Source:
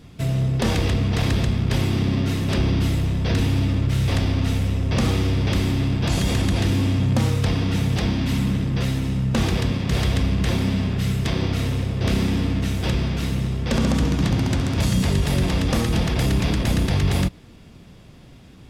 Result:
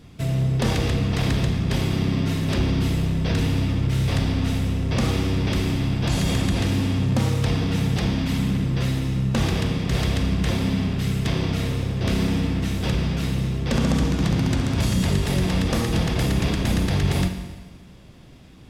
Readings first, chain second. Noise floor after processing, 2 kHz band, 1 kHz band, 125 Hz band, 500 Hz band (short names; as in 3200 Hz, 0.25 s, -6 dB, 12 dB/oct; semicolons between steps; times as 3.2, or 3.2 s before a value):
-45 dBFS, -1.0 dB, -1.0 dB, -1.5 dB, -0.5 dB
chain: Schroeder reverb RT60 1.3 s, DRR 7.5 dB; gain -1.5 dB